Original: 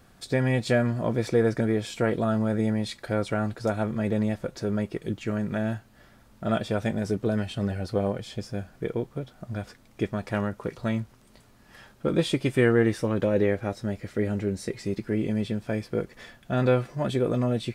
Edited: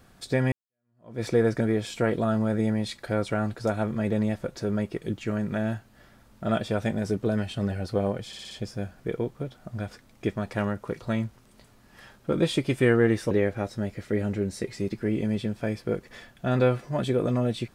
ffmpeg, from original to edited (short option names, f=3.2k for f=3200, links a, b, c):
-filter_complex "[0:a]asplit=7[a][b][c][d][e][f][g];[a]atrim=end=0.52,asetpts=PTS-STARTPTS,afade=t=out:st=0.516:d=0.004:c=hsin[h];[b]atrim=start=0.52:end=8.332,asetpts=PTS-STARTPTS,afade=t=in:d=0.71:c=exp[i];[c]atrim=start=8.268:end=8.332[j];[d]atrim=start=8.268:end=8.332[k];[e]atrim=start=8.268:end=8.332[l];[f]atrim=start=8.268:end=13.072[m];[g]atrim=start=13.368[n];[h][i]concat=n=2:v=0:a=1[o];[o][j]acrossfade=d=0.004:c1=hsin:c2=hsin[p];[p][k]acrossfade=d=0.004:c1=hsin:c2=hsin[q];[q][l]acrossfade=d=0.004:c1=hsin:c2=hsin[r];[r][m]acrossfade=d=0.004:c1=hsin:c2=hsin[s];[s][n]acrossfade=d=0.004:c1=hsin:c2=hsin"